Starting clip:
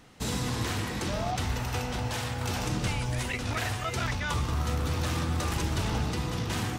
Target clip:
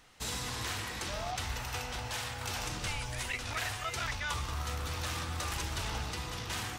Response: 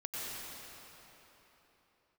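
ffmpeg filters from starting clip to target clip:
-af "equalizer=frequency=200:width_type=o:width=2.9:gain=-12.5,volume=-1.5dB"

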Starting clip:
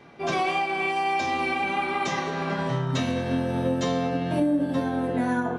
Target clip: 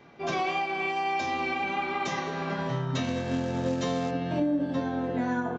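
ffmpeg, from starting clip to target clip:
ffmpeg -i in.wav -filter_complex "[0:a]asettb=1/sr,asplit=3[link_01][link_02][link_03];[link_01]atrim=end=3.044[link_04];[link_02]atrim=start=3.04:end=4.11,asetpts=PTS-STARTPTS,afade=type=in:duration=0.004:curve=qsin,afade=type=out:start_time=1.066:duration=0.004:curve=qsin,acrusher=bits=4:mode=log:mix=0:aa=0.000001[link_05];[link_03]atrim=start=4.106[link_06];[link_04][link_05]acrossfade=duration=0.004:curve1=hsin:curve2=qsin[link_07];[link_07][link_06]acrossfade=duration=0.004:curve1=qsin:curve2=hsin,aresample=16000,aresample=44100,volume=-3.5dB" out.wav

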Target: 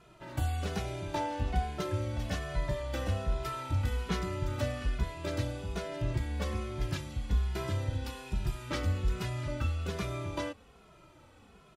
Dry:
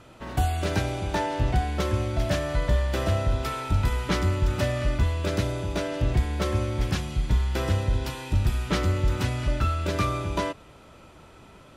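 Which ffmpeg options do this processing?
ffmpeg -i in.wav -filter_complex "[0:a]asplit=2[link_01][link_02];[link_02]adelay=2.4,afreqshift=-1.2[link_03];[link_01][link_03]amix=inputs=2:normalize=1,volume=-5dB" out.wav

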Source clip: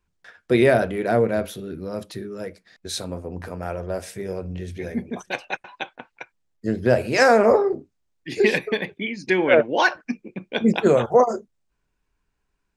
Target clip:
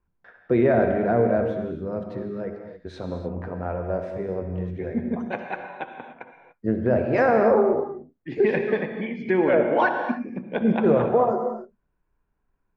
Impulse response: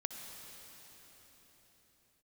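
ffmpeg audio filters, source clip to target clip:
-filter_complex "[0:a]lowpass=1400,alimiter=limit=-12dB:level=0:latency=1:release=16[link_01];[1:a]atrim=start_sample=2205,afade=type=out:start_time=0.35:duration=0.01,atrim=end_sample=15876[link_02];[link_01][link_02]afir=irnorm=-1:irlink=0,volume=2.5dB"

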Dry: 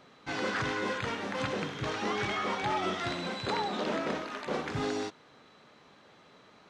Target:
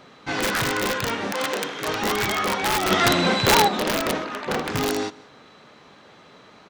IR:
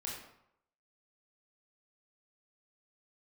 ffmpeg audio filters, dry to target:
-filter_complex "[0:a]aecho=1:1:176:0.0668,aeval=exprs='(mod(15.8*val(0)+1,2)-1)/15.8':channel_layout=same,asettb=1/sr,asplit=3[link_01][link_02][link_03];[link_01]atrim=end=1.324[link_04];[link_02]atrim=start=1.32:end=1.88,asetpts=PTS-STARTPTS,afade=type=in:duration=0.004:curve=qsin,afade=type=out:start_time=0.556:duration=0.004:curve=qsin,highpass=330[link_05];[link_03]atrim=start=1.876[link_06];[link_04][link_05]acrossfade=duration=0.004:curve1=hsin:curve2=qsin[link_07];[link_07][link_06]acrossfade=duration=0.004:curve1=qsin:curve2=hsin,asplit=3[link_08][link_09][link_10];[link_08]afade=type=out:start_time=2.9:duration=0.02[link_11];[link_09]acontrast=81,afade=type=in:start_time=2.9:duration=0.02,afade=type=out:start_time=3.67:duration=0.02[link_12];[link_10]afade=type=in:start_time=3.67:duration=0.02[link_13];[link_11][link_12][link_13]amix=inputs=3:normalize=0,asettb=1/sr,asplit=3[link_14][link_15][link_16];[link_14]atrim=end=4.244[link_17];[link_15]atrim=start=4.24:end=4.65,asetpts=PTS-STARTPTS,afade=type=in:duration=0.004:curve=qsin,afade=type=out:start_time=0.406:duration=0.004:curve=qsin,lowpass=frequency=4000:poles=1[link_18];[link_16]atrim=start=4.646[link_19];[link_17][link_18]acrossfade=duration=0.004:curve1=hsin:curve2=qsin[link_20];[link_20][link_19]acrossfade=duration=0.004:curve1=qsin:curve2=hsin,volume=8.5dB"

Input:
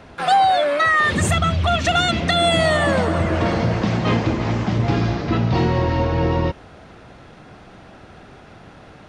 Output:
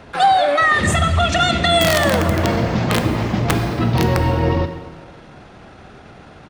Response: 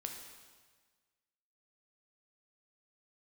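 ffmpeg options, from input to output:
-filter_complex "[0:a]aeval=exprs='(mod(2.66*val(0)+1,2)-1)/2.66':channel_layout=same,atempo=1.4,asplit=2[link_01][link_02];[1:a]atrim=start_sample=2205[link_03];[link_02][link_03]afir=irnorm=-1:irlink=0,volume=3dB[link_04];[link_01][link_04]amix=inputs=2:normalize=0,volume=-4dB"

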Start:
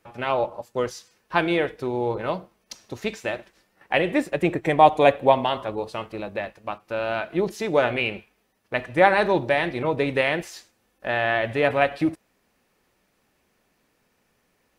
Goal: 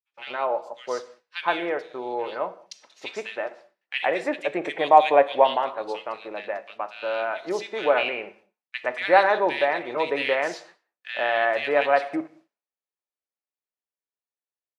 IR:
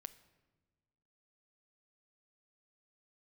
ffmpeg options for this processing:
-filter_complex "[0:a]highpass=500,lowpass=5800,acrossover=split=2100[link_01][link_02];[link_01]adelay=120[link_03];[link_03][link_02]amix=inputs=2:normalize=0,dynaudnorm=framelen=670:gausssize=9:maxgain=6.5dB,agate=range=-33dB:threshold=-49dB:ratio=3:detection=peak,asplit=2[link_04][link_05];[1:a]atrim=start_sample=2205,afade=type=out:start_time=0.26:duration=0.01,atrim=end_sample=11907[link_06];[link_05][link_06]afir=irnorm=-1:irlink=0,volume=13.5dB[link_07];[link_04][link_07]amix=inputs=2:normalize=0,volume=-11dB"

